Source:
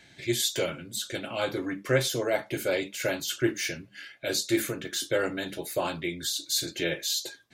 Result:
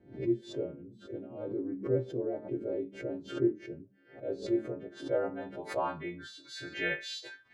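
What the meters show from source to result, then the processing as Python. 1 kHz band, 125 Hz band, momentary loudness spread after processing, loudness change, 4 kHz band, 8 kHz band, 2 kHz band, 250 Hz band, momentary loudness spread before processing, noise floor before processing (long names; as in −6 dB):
−4.0 dB, −5.5 dB, 13 LU, −6.0 dB, −15.5 dB, below −20 dB, −8.0 dB, −2.5 dB, 7 LU, −56 dBFS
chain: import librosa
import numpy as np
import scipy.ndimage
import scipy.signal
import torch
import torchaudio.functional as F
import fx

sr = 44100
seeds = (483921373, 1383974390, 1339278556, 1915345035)

y = fx.freq_snap(x, sr, grid_st=2)
y = fx.filter_sweep_lowpass(y, sr, from_hz=380.0, to_hz=2000.0, start_s=3.87, end_s=7.07, q=2.0)
y = fx.pre_swell(y, sr, db_per_s=140.0)
y = F.gain(torch.from_numpy(y), -6.5).numpy()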